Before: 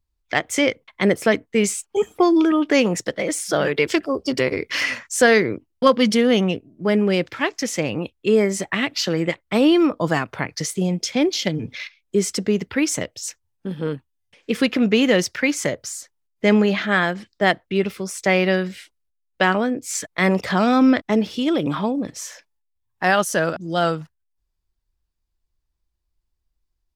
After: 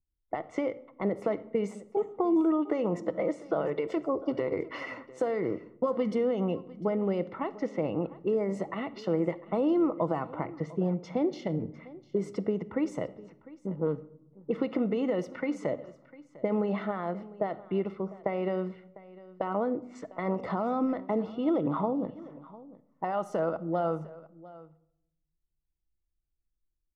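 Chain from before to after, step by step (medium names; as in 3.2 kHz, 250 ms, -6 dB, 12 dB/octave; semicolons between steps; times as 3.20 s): bass shelf 330 Hz -9.5 dB; level-controlled noise filter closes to 320 Hz, open at -20 dBFS; peak limiter -13.5 dBFS, peak gain reduction 10.5 dB; compression, threshold -23 dBFS, peak gain reduction 6 dB; Savitzky-Golay filter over 65 samples; delay 701 ms -19.5 dB; simulated room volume 2100 m³, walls furnished, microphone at 0.65 m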